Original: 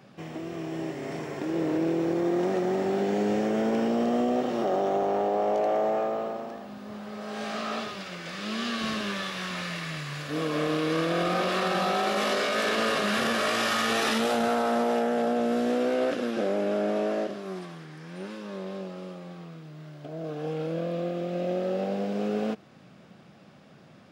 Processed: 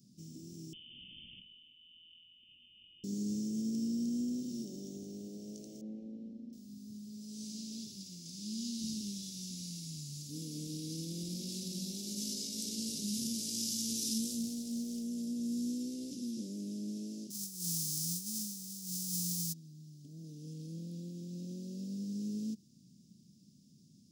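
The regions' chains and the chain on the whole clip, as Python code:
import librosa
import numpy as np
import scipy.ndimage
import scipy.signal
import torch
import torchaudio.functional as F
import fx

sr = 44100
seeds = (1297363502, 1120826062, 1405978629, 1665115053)

y = fx.chain(x, sr, fx.over_compress(threshold_db=-35.0, ratio=-1.0),
    fx.doubler(ms=18.0, db=-12.5),
    fx.freq_invert(carrier_hz=3300), at=(0.73, 3.04))
y = fx.chain(y, sr, fx.lowpass(hz=1700.0, slope=12),
    fx.comb(ms=3.8, depth=0.69), at=(5.81, 6.53))
y = fx.chain(y, sr, fx.quant_float(bits=6),
    fx.doppler_dist(depth_ms=0.13), at=(14.41, 15.04))
y = fx.envelope_flatten(y, sr, power=0.3, at=(17.3, 19.52), fade=0.02)
y = fx.over_compress(y, sr, threshold_db=-41.0, ratio=-0.5, at=(17.3, 19.52), fade=0.02)
y = scipy.signal.sosfilt(scipy.signal.ellip(3, 1.0, 80, [240.0, 5600.0], 'bandstop', fs=sr, output='sos'), y)
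y = fx.low_shelf(y, sr, hz=440.0, db=-11.0)
y = y * 10.0 ** (2.5 / 20.0)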